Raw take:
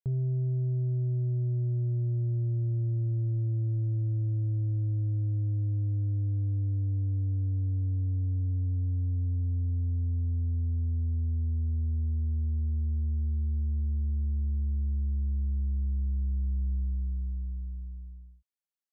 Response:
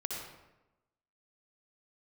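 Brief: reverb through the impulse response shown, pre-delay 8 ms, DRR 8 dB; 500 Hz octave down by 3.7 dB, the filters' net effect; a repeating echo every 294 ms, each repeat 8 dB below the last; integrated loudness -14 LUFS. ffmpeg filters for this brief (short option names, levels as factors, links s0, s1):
-filter_complex "[0:a]equalizer=f=500:t=o:g=-6.5,aecho=1:1:294|588|882|1176|1470:0.398|0.159|0.0637|0.0255|0.0102,asplit=2[s0][s1];[1:a]atrim=start_sample=2205,adelay=8[s2];[s1][s2]afir=irnorm=-1:irlink=0,volume=0.316[s3];[s0][s3]amix=inputs=2:normalize=0,volume=5.62"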